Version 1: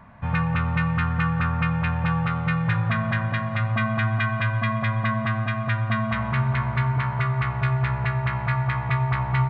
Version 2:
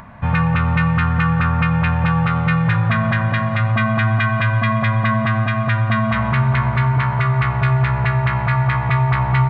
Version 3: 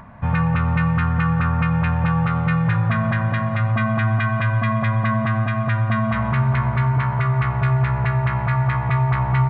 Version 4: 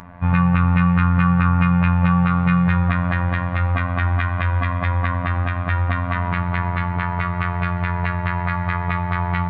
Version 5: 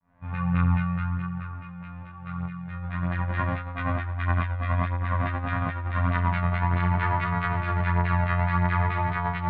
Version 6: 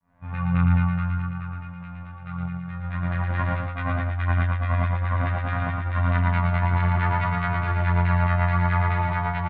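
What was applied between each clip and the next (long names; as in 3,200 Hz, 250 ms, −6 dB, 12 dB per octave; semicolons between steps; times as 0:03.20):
in parallel at +2 dB: brickwall limiter −18.5 dBFS, peak gain reduction 7 dB; on the sum: upward compression, threshold −39 dBFS; level +1 dB
high-shelf EQ 2,600 Hz −9 dB; level −2 dB
phases set to zero 88.1 Hz; level +4 dB
fade in at the beginning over 1.71 s; compressor whose output falls as the input rises −23 dBFS, ratio −0.5; chorus effect 0.54 Hz, delay 18.5 ms, depth 5.8 ms
single-tap delay 115 ms −4 dB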